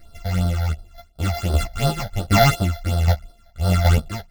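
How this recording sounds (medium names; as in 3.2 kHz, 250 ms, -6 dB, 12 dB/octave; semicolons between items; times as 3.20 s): a buzz of ramps at a fixed pitch in blocks of 64 samples; phasing stages 8, 2.8 Hz, lowest notch 330–2300 Hz; chopped level 1.3 Hz, depth 60%, duty 30%; a shimmering, thickened sound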